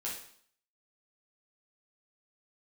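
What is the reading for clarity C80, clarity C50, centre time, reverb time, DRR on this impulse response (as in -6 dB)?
8.5 dB, 4.0 dB, 38 ms, 0.60 s, -6.0 dB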